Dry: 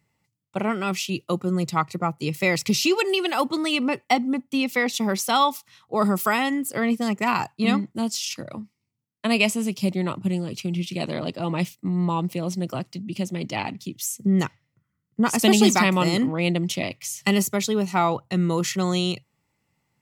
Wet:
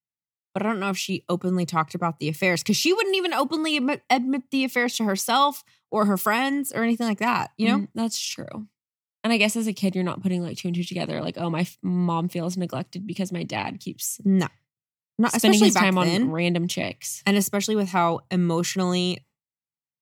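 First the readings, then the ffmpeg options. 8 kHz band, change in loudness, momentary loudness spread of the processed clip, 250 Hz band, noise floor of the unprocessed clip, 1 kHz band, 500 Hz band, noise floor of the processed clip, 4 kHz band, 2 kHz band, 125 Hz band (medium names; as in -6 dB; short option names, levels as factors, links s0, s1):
0.0 dB, 0.0 dB, 9 LU, 0.0 dB, -77 dBFS, 0.0 dB, 0.0 dB, under -85 dBFS, 0.0 dB, 0.0 dB, 0.0 dB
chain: -af "agate=range=0.0224:threshold=0.00891:ratio=3:detection=peak"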